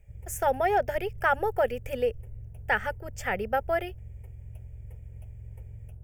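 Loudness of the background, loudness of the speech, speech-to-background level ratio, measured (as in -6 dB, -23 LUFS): -45.0 LUFS, -28.5 LUFS, 16.5 dB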